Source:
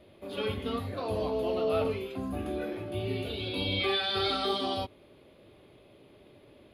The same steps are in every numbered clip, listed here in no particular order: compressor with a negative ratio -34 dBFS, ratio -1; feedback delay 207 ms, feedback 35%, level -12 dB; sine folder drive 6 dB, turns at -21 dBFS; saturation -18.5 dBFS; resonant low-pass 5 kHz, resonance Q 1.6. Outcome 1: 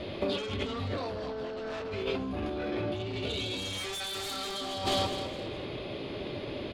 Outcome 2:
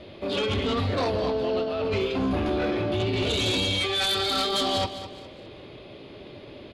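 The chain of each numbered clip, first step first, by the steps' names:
resonant low-pass > saturation > sine folder > feedback delay > compressor with a negative ratio; saturation > compressor with a negative ratio > resonant low-pass > sine folder > feedback delay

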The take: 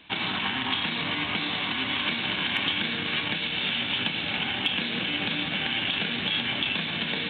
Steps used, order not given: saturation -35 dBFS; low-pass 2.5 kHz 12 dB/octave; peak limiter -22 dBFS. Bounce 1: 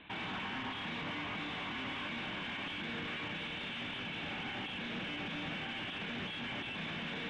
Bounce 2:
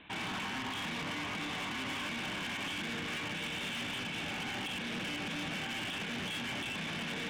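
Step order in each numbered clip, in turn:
peak limiter > saturation > low-pass; low-pass > peak limiter > saturation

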